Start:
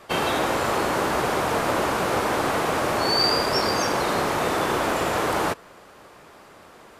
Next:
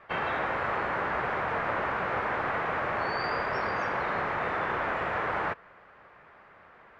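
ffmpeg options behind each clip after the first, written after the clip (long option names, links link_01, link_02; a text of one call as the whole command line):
ffmpeg -i in.wav -af "lowpass=frequency=1900:width_type=q:width=1.9,equalizer=frequency=300:width=1.4:gain=-6.5,volume=-7.5dB" out.wav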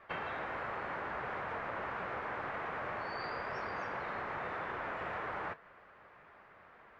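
ffmpeg -i in.wav -af "acompressor=threshold=-32dB:ratio=6,flanger=delay=2.7:depth=7.6:regen=-71:speed=1.9:shape=sinusoidal" out.wav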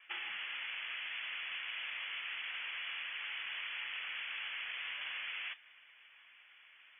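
ffmpeg -i in.wav -af "lowpass=frequency=3000:width_type=q:width=0.5098,lowpass=frequency=3000:width_type=q:width=0.6013,lowpass=frequency=3000:width_type=q:width=0.9,lowpass=frequency=3000:width_type=q:width=2.563,afreqshift=-3500,volume=-2.5dB" out.wav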